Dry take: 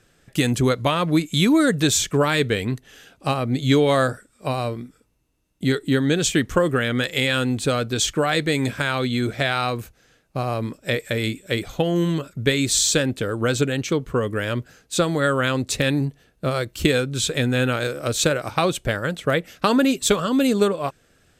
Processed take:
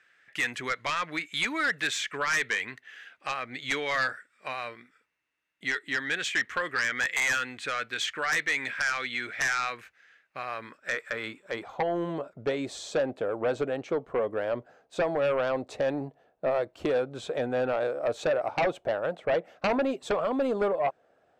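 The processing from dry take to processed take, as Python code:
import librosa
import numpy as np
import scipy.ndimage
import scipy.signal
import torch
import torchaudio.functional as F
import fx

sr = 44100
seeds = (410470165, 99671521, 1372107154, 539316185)

y = fx.filter_sweep_bandpass(x, sr, from_hz=1900.0, to_hz=700.0, start_s=10.44, end_s=12.12, q=2.8)
y = fx.fold_sine(y, sr, drive_db=9, ceiling_db=-13.5)
y = F.gain(torch.from_numpy(y), -7.5).numpy()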